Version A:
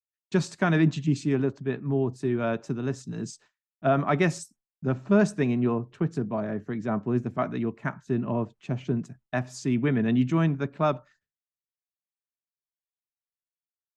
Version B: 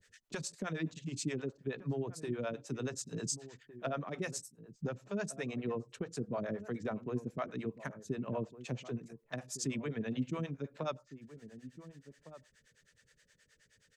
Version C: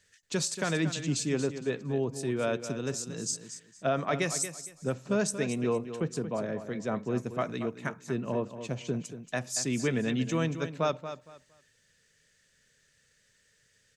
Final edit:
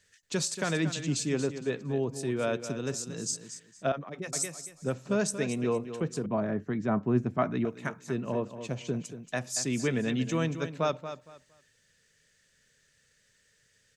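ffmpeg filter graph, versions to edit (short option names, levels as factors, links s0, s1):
-filter_complex "[2:a]asplit=3[s0][s1][s2];[s0]atrim=end=3.922[s3];[1:a]atrim=start=3.918:end=4.332[s4];[s1]atrim=start=4.328:end=6.262[s5];[0:a]atrim=start=6.258:end=7.652[s6];[s2]atrim=start=7.648[s7];[s3][s4]acrossfade=d=0.004:c1=hsin:c2=hsin[s8];[s8][s5]acrossfade=d=0.004:c1=hsin:c2=hsin[s9];[s9][s6]acrossfade=d=0.004:c1=hsin:c2=hsin[s10];[s10][s7]acrossfade=d=0.004:c1=hsin:c2=hsin"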